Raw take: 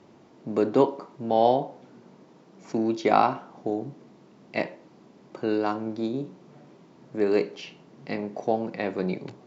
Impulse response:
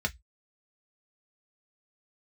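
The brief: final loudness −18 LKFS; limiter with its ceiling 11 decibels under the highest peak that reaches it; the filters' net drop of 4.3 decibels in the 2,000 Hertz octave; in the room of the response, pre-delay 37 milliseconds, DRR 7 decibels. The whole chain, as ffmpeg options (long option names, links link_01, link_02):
-filter_complex "[0:a]equalizer=frequency=2000:width_type=o:gain=-5.5,alimiter=limit=-16.5dB:level=0:latency=1,asplit=2[link_01][link_02];[1:a]atrim=start_sample=2205,adelay=37[link_03];[link_02][link_03]afir=irnorm=-1:irlink=0,volume=-13.5dB[link_04];[link_01][link_04]amix=inputs=2:normalize=0,volume=12dB"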